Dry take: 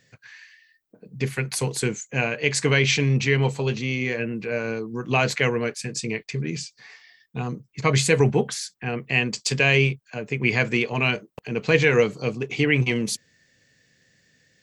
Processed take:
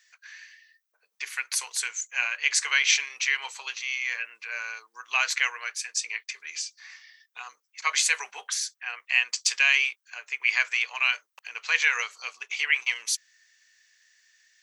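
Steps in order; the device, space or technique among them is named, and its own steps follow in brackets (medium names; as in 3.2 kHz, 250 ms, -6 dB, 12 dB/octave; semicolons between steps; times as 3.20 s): headphones lying on a table (high-pass 1.1 kHz 24 dB/octave; peaking EQ 6 kHz +6 dB 0.22 oct)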